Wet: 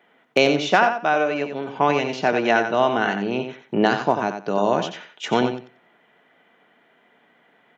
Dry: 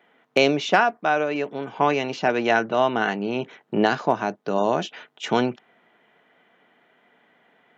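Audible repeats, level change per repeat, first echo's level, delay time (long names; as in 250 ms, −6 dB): 2, −15.0 dB, −8.0 dB, 90 ms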